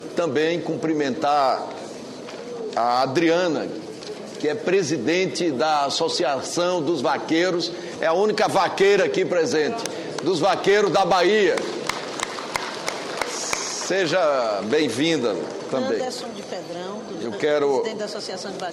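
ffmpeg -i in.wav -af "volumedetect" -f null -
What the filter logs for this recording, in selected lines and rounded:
mean_volume: -22.3 dB
max_volume: -6.6 dB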